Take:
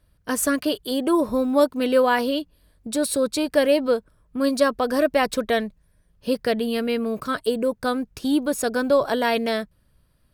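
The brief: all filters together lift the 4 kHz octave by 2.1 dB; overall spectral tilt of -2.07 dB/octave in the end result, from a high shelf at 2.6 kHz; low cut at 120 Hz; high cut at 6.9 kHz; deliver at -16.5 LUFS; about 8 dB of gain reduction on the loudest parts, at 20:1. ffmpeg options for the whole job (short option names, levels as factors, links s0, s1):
-af "highpass=120,lowpass=6900,highshelf=f=2600:g=-6,equalizer=f=4000:t=o:g=8,acompressor=threshold=0.0891:ratio=20,volume=3.35"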